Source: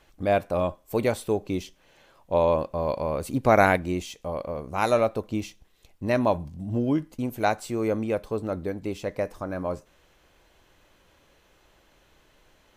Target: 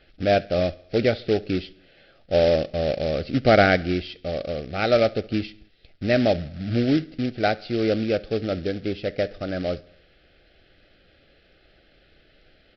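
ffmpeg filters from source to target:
ffmpeg -i in.wav -af "aresample=11025,acrusher=bits=3:mode=log:mix=0:aa=0.000001,aresample=44100,asuperstop=centerf=990:order=4:qfactor=1.7,aecho=1:1:69|138|207|276:0.0668|0.0401|0.0241|0.0144,volume=3.5dB" out.wav

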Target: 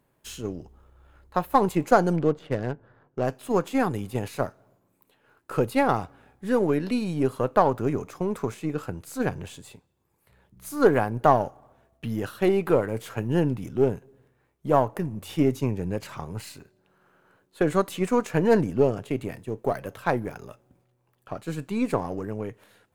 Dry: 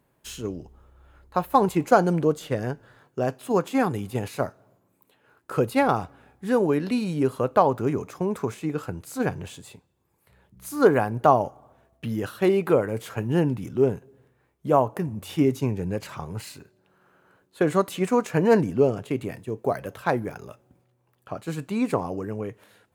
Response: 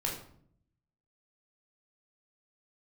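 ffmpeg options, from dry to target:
-filter_complex "[0:a]aeval=exprs='if(lt(val(0),0),0.708*val(0),val(0))':channel_layout=same,asettb=1/sr,asplit=3[link_01][link_02][link_03];[link_01]atrim=end=2.164[link_04];[link_02]atrim=start=2.16:end=3.24,asetpts=PTS-STARTPTS,afade=type=in:duration=0.004:curve=qsin,afade=type=out:start_time=1.076:duration=0.004:curve=qsin,adynamicsmooth=sensitivity=7.5:basefreq=1400[link_05];[link_03]atrim=start=3.236[link_06];[link_04][link_05]acrossfade=duration=0.004:curve1=hsin:curve2=qsin[link_07];[link_07][link_06]acrossfade=duration=0.004:curve1=qsin:curve2=hsin"

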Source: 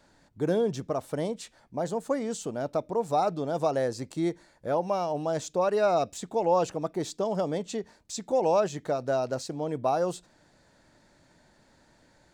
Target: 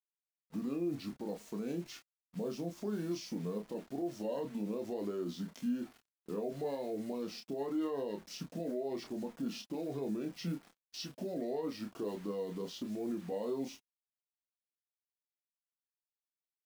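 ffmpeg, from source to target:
ffmpeg -i in.wav -filter_complex "[0:a]asetrate=32667,aresample=44100,lowshelf=frequency=130:width_type=q:width=3:gain=-12,acrusher=bits=7:mix=0:aa=0.000001,flanger=delay=2.7:depth=1.8:regen=-44:speed=1:shape=sinusoidal,alimiter=level_in=3dB:limit=-24dB:level=0:latency=1:release=43,volume=-3dB,agate=range=-17dB:threshold=-52dB:ratio=16:detection=peak,asplit=2[link_01][link_02];[link_02]adelay=29,volume=-5.5dB[link_03];[link_01][link_03]amix=inputs=2:normalize=0,adynamicequalizer=threshold=0.00398:dfrequency=2300:dqfactor=0.7:tfrequency=2300:tqfactor=0.7:attack=5:release=100:ratio=0.375:range=1.5:mode=cutabove:tftype=highshelf,volume=-4dB" out.wav

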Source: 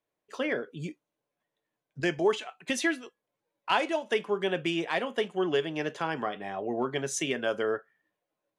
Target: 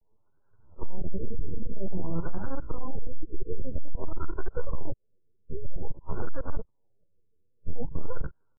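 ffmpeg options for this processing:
ffmpeg -i in.wav -filter_complex "[0:a]areverse,asplit=2[link_01][link_02];[link_02]acrusher=bits=5:mix=0:aa=0.000001,volume=-5dB[link_03];[link_01][link_03]amix=inputs=2:normalize=0,bass=frequency=250:gain=-4,treble=frequency=4000:gain=-1,bandreject=frequency=4500:width=25,aeval=exprs='abs(val(0))':channel_layout=same,acompressor=threshold=-31dB:ratio=16,lowshelf=frequency=220:gain=7.5,acrossover=split=110|280|840|2500[link_04][link_05][link_06][link_07][link_08];[link_04]acompressor=threshold=-30dB:ratio=4[link_09];[link_05]acompressor=threshold=-46dB:ratio=4[link_10];[link_06]acompressor=threshold=-57dB:ratio=4[link_11];[link_07]acompressor=threshold=-53dB:ratio=4[link_12];[link_08]acompressor=threshold=-52dB:ratio=4[link_13];[link_09][link_10][link_11][link_12][link_13]amix=inputs=5:normalize=0,aecho=1:1:3.5:0.47,volume=29dB,asoftclip=hard,volume=-29dB,asetrate=74167,aresample=44100,atempo=0.594604,afftfilt=real='re*lt(b*sr/1024,500*pow(1700/500,0.5+0.5*sin(2*PI*0.51*pts/sr)))':imag='im*lt(b*sr/1024,500*pow(1700/500,0.5+0.5*sin(2*PI*0.51*pts/sr)))':win_size=1024:overlap=0.75,volume=13dB" out.wav

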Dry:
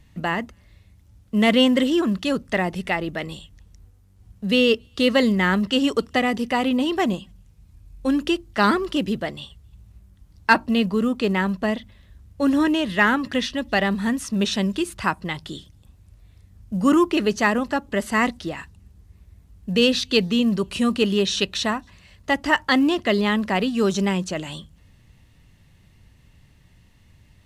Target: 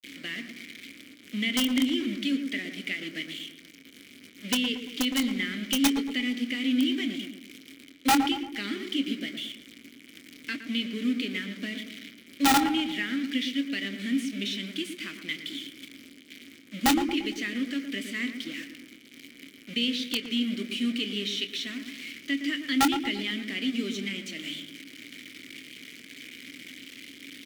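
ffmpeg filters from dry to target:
ffmpeg -i in.wav -filter_complex "[0:a]aeval=exprs='val(0)+0.5*0.0335*sgn(val(0))':channel_layout=same,aemphasis=mode=production:type=riaa,agate=range=-33dB:threshold=-26dB:ratio=3:detection=peak,lowshelf=frequency=250:gain=2.5,acompressor=threshold=-23dB:ratio=2.5,acrusher=bits=4:mix=0:aa=0.000001,asplit=3[link_01][link_02][link_03];[link_01]bandpass=frequency=270:width_type=q:width=8,volume=0dB[link_04];[link_02]bandpass=frequency=2290:width_type=q:width=8,volume=-6dB[link_05];[link_03]bandpass=frequency=3010:width_type=q:width=8,volume=-9dB[link_06];[link_04][link_05][link_06]amix=inputs=3:normalize=0,aeval=exprs='(mod(15.8*val(0)+1,2)-1)/15.8':channel_layout=same,asplit=2[link_07][link_08];[link_08]adelay=25,volume=-12dB[link_09];[link_07][link_09]amix=inputs=2:normalize=0,asplit=2[link_10][link_11];[link_11]adelay=115,lowpass=frequency=1200:poles=1,volume=-6.5dB,asplit=2[link_12][link_13];[link_13]adelay=115,lowpass=frequency=1200:poles=1,volume=0.53,asplit=2[link_14][link_15];[link_15]adelay=115,lowpass=frequency=1200:poles=1,volume=0.53,asplit=2[link_16][link_17];[link_17]adelay=115,lowpass=frequency=1200:poles=1,volume=0.53,asplit=2[link_18][link_19];[link_19]adelay=115,lowpass=frequency=1200:poles=1,volume=0.53,asplit=2[link_20][link_21];[link_21]adelay=115,lowpass=frequency=1200:poles=1,volume=0.53,asplit=2[link_22][link_23];[link_23]adelay=115,lowpass=frequency=1200:poles=1,volume=0.53[link_24];[link_10][link_12][link_14][link_16][link_18][link_20][link_22][link_24]amix=inputs=8:normalize=0,volume=7.5dB" out.wav

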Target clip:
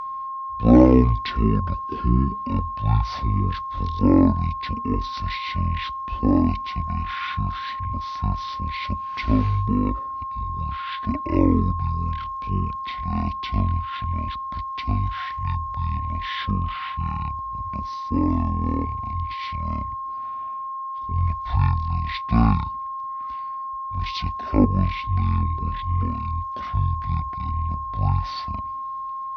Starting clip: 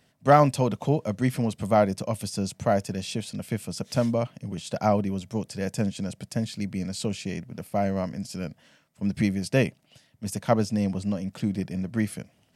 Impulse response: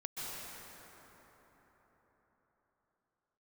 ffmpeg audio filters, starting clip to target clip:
-af "aeval=exprs='val(0)+0.0282*sin(2*PI*2500*n/s)':channel_layout=same,asetrate=18846,aresample=44100,volume=3dB"

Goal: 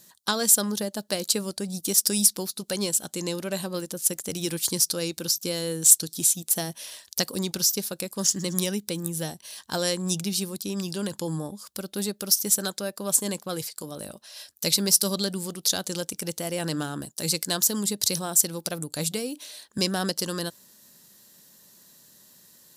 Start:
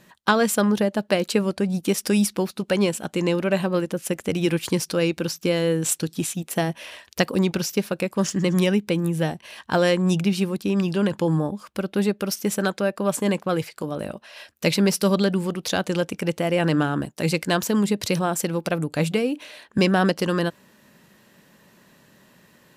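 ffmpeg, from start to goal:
ffmpeg -i in.wav -af "aexciter=amount=7.3:drive=4:freq=3700,volume=-9dB" out.wav

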